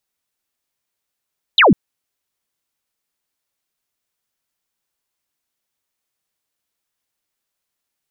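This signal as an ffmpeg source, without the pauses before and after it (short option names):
-f lavfi -i "aevalsrc='0.473*clip(t/0.002,0,1)*clip((0.15-t)/0.002,0,1)*sin(2*PI*4100*0.15/log(150/4100)*(exp(log(150/4100)*t/0.15)-1))':d=0.15:s=44100"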